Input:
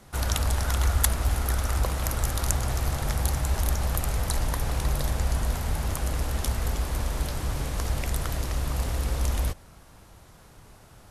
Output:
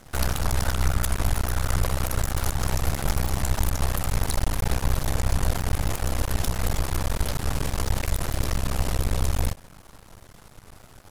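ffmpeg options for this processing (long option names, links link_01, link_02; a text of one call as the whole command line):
ffmpeg -i in.wav -af "acontrast=74,alimiter=limit=-10dB:level=0:latency=1:release=118,aeval=exprs='max(val(0),0)':channel_layout=same" out.wav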